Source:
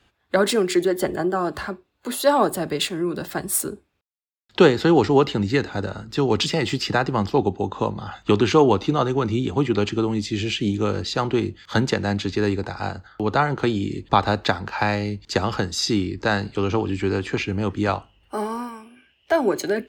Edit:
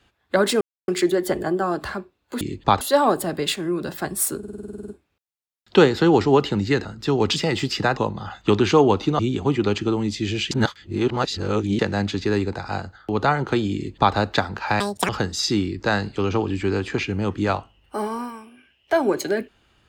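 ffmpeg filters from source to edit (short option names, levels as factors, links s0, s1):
-filter_complex "[0:a]asplit=21[s0][s1][s2][s3][s4][s5][s6][s7][s8][s9][s10][s11][s12][s13][s14][s15][s16][s17][s18][s19][s20];[s0]atrim=end=0.61,asetpts=PTS-STARTPTS,afade=t=out:st=0.606:d=0.004:c=hsin,apad=pad_dur=0.27[s21];[s1]atrim=start=0.61:end=2.142,asetpts=PTS-STARTPTS,afade=t=in:d=0.004:c=hsin[s22];[s2]atrim=start=13.858:end=14.262[s23];[s3]atrim=start=2.138:end=3.762[s24];[s4]atrim=start=3.708:end=3.762[s25];[s5]atrim=start=3.708:end=3.762[s26];[s6]atrim=start=3.708:end=3.762[s27];[s7]atrim=start=3.708:end=3.762[s28];[s8]atrim=start=3.708:end=3.762[s29];[s9]atrim=start=3.708:end=3.762[s30];[s10]atrim=start=3.708:end=3.762[s31];[s11]atrim=start=3.708:end=3.762[s32];[s12]atrim=start=3.708:end=3.762[s33];[s13]atrim=start=3.708:end=5.682[s34];[s14]atrim=start=5.948:end=7.072[s35];[s15]atrim=start=7.778:end=9.002[s36];[s16]atrim=start=9.298:end=10.622[s37];[s17]atrim=start=10.618:end=11.902,asetpts=PTS-STARTPTS,areverse[s38];[s18]atrim=start=11.898:end=14.914[s39];[s19]atrim=start=14.91:end=15.48,asetpts=PTS-STARTPTS,asetrate=86877,aresample=44100[s40];[s20]atrim=start=15.476[s41];[s21][s22]concat=n=2:v=0:a=1[s42];[s42][s23]acrossfade=d=0.004:c1=hsin:c2=hsin[s43];[s43][s24]acrossfade=d=0.004:c1=hsin:c2=hsin[s44];[s44][s25]acrossfade=d=0.004:c1=hsin:c2=hsin[s45];[s45][s26]acrossfade=d=0.004:c1=hsin:c2=hsin[s46];[s46][s27]acrossfade=d=0.004:c1=hsin:c2=hsin[s47];[s47][s28]acrossfade=d=0.004:c1=hsin:c2=hsin[s48];[s48][s29]acrossfade=d=0.004:c1=hsin:c2=hsin[s49];[s49][s30]acrossfade=d=0.004:c1=hsin:c2=hsin[s50];[s50][s31]acrossfade=d=0.004:c1=hsin:c2=hsin[s51];[s51][s32]acrossfade=d=0.004:c1=hsin:c2=hsin[s52];[s52][s33]acrossfade=d=0.004:c1=hsin:c2=hsin[s53];[s53][s34]acrossfade=d=0.004:c1=hsin:c2=hsin[s54];[s54][s35]acrossfade=d=0.004:c1=hsin:c2=hsin[s55];[s55][s36]acrossfade=d=0.004:c1=hsin:c2=hsin[s56];[s56][s37]acrossfade=d=0.004:c1=hsin:c2=hsin[s57];[s57][s38]acrossfade=d=0.004:c1=hsin:c2=hsin[s58];[s58][s39]acrossfade=d=0.004:c1=hsin:c2=hsin[s59];[s59][s40]acrossfade=d=0.004:c1=hsin:c2=hsin[s60];[s60][s41]acrossfade=d=0.004:c1=hsin:c2=hsin"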